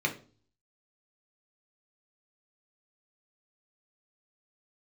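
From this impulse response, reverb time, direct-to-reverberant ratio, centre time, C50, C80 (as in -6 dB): 0.40 s, 1.5 dB, 11 ms, 13.0 dB, 18.0 dB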